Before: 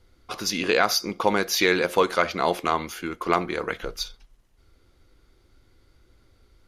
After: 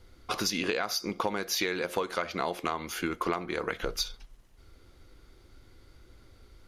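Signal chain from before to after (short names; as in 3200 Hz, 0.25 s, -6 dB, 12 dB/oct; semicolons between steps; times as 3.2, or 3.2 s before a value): compressor 10:1, threshold -30 dBFS, peak gain reduction 16 dB; gain +3.5 dB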